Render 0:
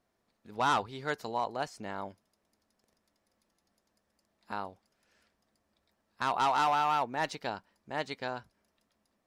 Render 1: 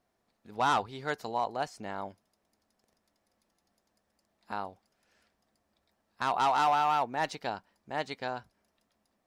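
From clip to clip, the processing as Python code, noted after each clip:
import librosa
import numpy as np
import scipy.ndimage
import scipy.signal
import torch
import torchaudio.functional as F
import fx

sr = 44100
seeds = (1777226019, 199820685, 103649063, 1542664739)

y = fx.peak_eq(x, sr, hz=750.0, db=3.5, octaves=0.33)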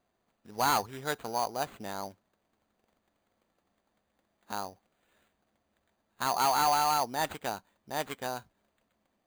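y = fx.sample_hold(x, sr, seeds[0], rate_hz=5400.0, jitter_pct=0)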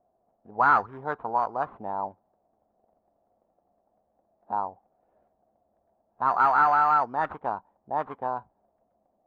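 y = fx.envelope_lowpass(x, sr, base_hz=700.0, top_hz=1400.0, q=4.0, full_db=-25.0, direction='up')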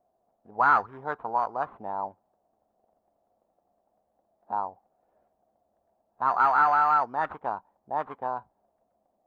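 y = fx.low_shelf(x, sr, hz=490.0, db=-4.0)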